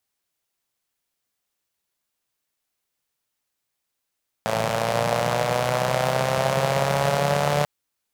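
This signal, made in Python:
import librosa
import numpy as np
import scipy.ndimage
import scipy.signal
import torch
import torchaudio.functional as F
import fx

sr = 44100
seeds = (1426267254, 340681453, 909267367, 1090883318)

y = fx.engine_four_rev(sr, seeds[0], length_s=3.19, rpm=3300, resonances_hz=(160.0, 580.0), end_rpm=4400)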